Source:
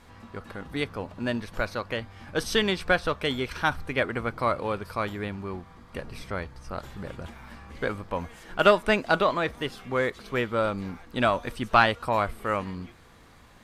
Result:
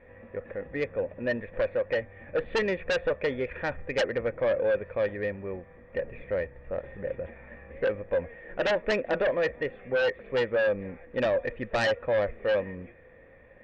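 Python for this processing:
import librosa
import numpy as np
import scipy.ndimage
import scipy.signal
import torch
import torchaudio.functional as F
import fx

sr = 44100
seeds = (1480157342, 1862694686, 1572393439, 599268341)

p1 = fx.formant_cascade(x, sr, vowel='e')
p2 = fx.low_shelf(p1, sr, hz=130.0, db=4.5)
p3 = fx.fold_sine(p2, sr, drive_db=13, ceiling_db=-18.0)
y = p2 + (p3 * 10.0 ** (-6.5 / 20.0))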